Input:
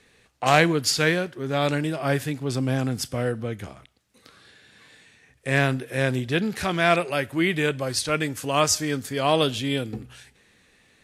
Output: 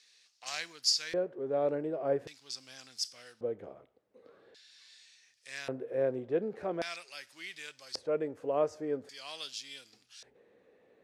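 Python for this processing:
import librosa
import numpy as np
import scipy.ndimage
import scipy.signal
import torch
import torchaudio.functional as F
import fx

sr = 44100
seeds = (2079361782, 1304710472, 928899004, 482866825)

y = fx.law_mismatch(x, sr, coded='mu')
y = fx.dynamic_eq(y, sr, hz=3400.0, q=2.0, threshold_db=-40.0, ratio=4.0, max_db=-5)
y = fx.filter_lfo_bandpass(y, sr, shape='square', hz=0.44, low_hz=490.0, high_hz=5100.0, q=3.0)
y = y * 10.0 ** (-1.0 / 20.0)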